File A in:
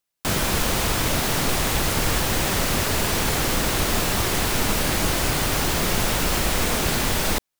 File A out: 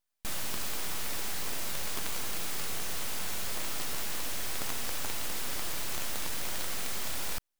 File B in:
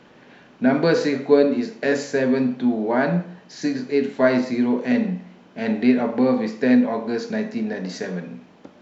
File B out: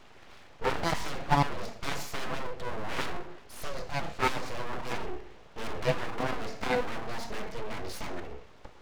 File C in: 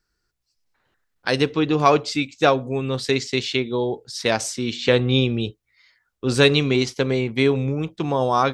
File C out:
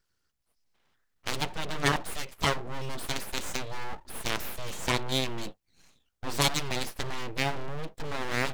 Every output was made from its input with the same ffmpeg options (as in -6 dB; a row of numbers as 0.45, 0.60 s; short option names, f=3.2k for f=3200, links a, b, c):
-af "aeval=exprs='abs(val(0))':c=same,aeval=exprs='0.841*(cos(1*acos(clip(val(0)/0.841,-1,1)))-cos(1*PI/2))+0.422*(cos(4*acos(clip(val(0)/0.841,-1,1)))-cos(4*PI/2))':c=same,volume=-1.5dB"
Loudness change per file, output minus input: -13.0, -13.0, -11.0 LU